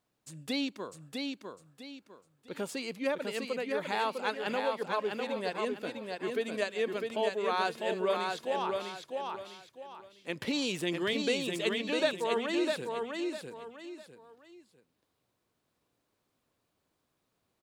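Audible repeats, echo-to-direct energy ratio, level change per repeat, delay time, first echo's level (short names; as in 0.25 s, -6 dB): 3, -3.5 dB, -10.0 dB, 0.652 s, -4.0 dB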